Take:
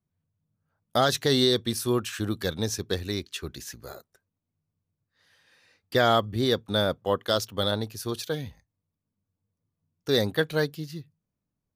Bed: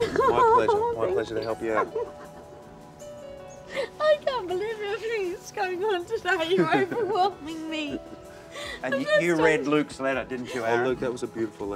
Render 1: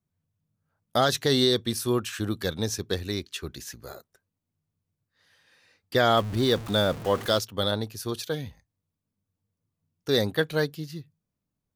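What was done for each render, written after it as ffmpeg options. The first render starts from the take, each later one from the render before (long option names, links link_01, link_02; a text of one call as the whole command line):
ffmpeg -i in.wav -filter_complex "[0:a]asettb=1/sr,asplit=3[link_01][link_02][link_03];[link_01]atrim=end=6.174[link_04];[link_02]atrim=start=6.17:end=7.39,asetpts=PTS-STARTPTS,afade=type=in:duration=0.004:curve=qsin,afade=type=out:start_time=1.216:duration=0.004:curve=qsin,aeval=exprs='val(0)+0.5*0.0237*sgn(val(0))':channel_layout=same[link_05];[link_03]atrim=start=7.386[link_06];[link_04][link_05]acrossfade=duration=0.004:curve1=hsin:curve2=qsin[link_07];[link_07][link_06]acrossfade=duration=0.004:curve1=qsin:curve2=hsin" out.wav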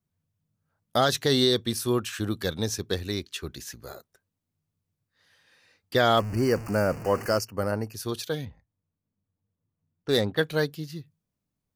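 ffmpeg -i in.wav -filter_complex "[0:a]asettb=1/sr,asplit=3[link_01][link_02][link_03];[link_01]atrim=end=6.194[link_04];[link_02]atrim=start=6.19:end=7.94,asetpts=PTS-STARTPTS,afade=type=in:duration=0.004:curve=qsin,afade=type=out:start_time=1.746:duration=0.004:curve=qsin,asuperstop=centerf=3600:order=12:qfactor=2.4[link_05];[link_03]atrim=start=7.936[link_06];[link_04][link_05]acrossfade=duration=0.004:curve1=hsin:curve2=qsin[link_07];[link_07][link_06]acrossfade=duration=0.004:curve1=qsin:curve2=hsin,asettb=1/sr,asplit=3[link_08][link_09][link_10];[link_08]atrim=end=8.454[link_11];[link_09]atrim=start=8.45:end=10.37,asetpts=PTS-STARTPTS,afade=type=in:duration=0.004:curve=qsin,afade=type=out:start_time=1.916:duration=0.004:curve=qsin,adynamicsmooth=sensitivity=4:basefreq=2100[link_12];[link_10]atrim=start=10.366[link_13];[link_11][link_12]acrossfade=duration=0.004:curve1=hsin:curve2=qsin[link_14];[link_14][link_13]acrossfade=duration=0.004:curve1=qsin:curve2=hsin" out.wav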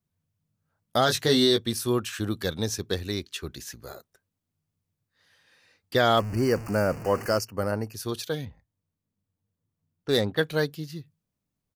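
ffmpeg -i in.wav -filter_complex "[0:a]asplit=3[link_01][link_02][link_03];[link_01]afade=type=out:start_time=1.06:duration=0.02[link_04];[link_02]asplit=2[link_05][link_06];[link_06]adelay=19,volume=-5dB[link_07];[link_05][link_07]amix=inputs=2:normalize=0,afade=type=in:start_time=1.06:duration=0.02,afade=type=out:start_time=1.57:duration=0.02[link_08];[link_03]afade=type=in:start_time=1.57:duration=0.02[link_09];[link_04][link_08][link_09]amix=inputs=3:normalize=0" out.wav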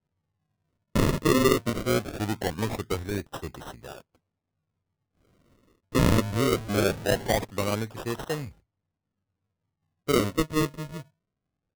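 ffmpeg -i in.wav -af "acrusher=samples=38:mix=1:aa=0.000001:lfo=1:lforange=38:lforate=0.21" out.wav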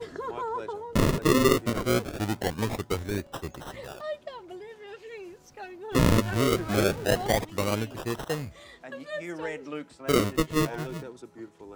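ffmpeg -i in.wav -i bed.wav -filter_complex "[1:a]volume=-13.5dB[link_01];[0:a][link_01]amix=inputs=2:normalize=0" out.wav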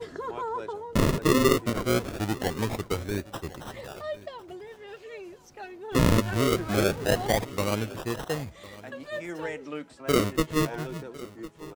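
ffmpeg -i in.wav -af "aecho=1:1:1054:0.106" out.wav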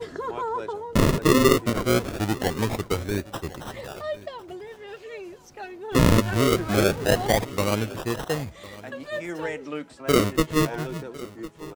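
ffmpeg -i in.wav -af "volume=3.5dB" out.wav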